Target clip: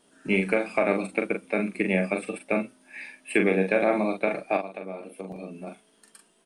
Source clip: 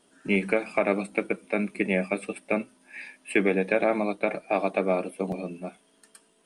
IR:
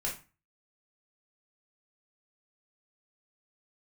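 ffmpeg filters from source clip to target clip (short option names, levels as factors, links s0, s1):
-filter_complex "[0:a]asplit=3[s0][s1][s2];[s0]afade=t=out:st=4.56:d=0.02[s3];[s1]acompressor=threshold=0.0178:ratio=5,afade=t=in:st=4.56:d=0.02,afade=t=out:st=5.66:d=0.02[s4];[s2]afade=t=in:st=5.66:d=0.02[s5];[s3][s4][s5]amix=inputs=3:normalize=0,asplit=2[s6][s7];[s7]adelay=42,volume=0.501[s8];[s6][s8]amix=inputs=2:normalize=0"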